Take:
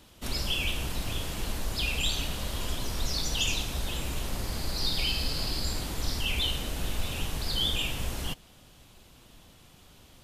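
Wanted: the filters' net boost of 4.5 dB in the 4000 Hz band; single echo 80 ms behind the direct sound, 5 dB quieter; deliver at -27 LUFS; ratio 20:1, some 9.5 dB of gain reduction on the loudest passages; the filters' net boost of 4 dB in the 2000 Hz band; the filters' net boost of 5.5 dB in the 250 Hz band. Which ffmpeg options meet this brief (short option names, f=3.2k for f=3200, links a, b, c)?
-af "equalizer=f=250:t=o:g=7,equalizer=f=2k:t=o:g=3.5,equalizer=f=4k:t=o:g=4.5,acompressor=threshold=-30dB:ratio=20,aecho=1:1:80:0.562,volume=6.5dB"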